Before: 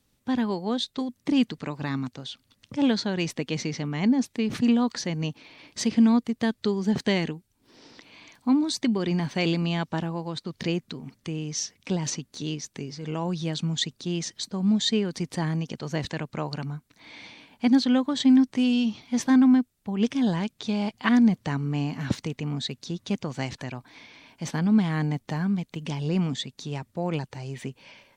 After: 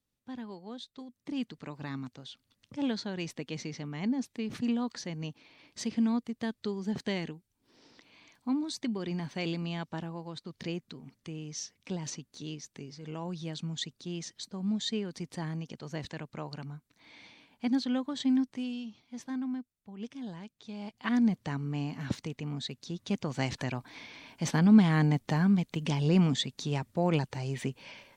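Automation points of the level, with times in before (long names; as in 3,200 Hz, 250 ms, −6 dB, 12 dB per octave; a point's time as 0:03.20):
0:01.05 −16 dB
0:01.73 −9 dB
0:18.40 −9 dB
0:18.88 −17 dB
0:20.63 −17 dB
0:21.23 −6.5 dB
0:22.85 −6.5 dB
0:23.60 +1 dB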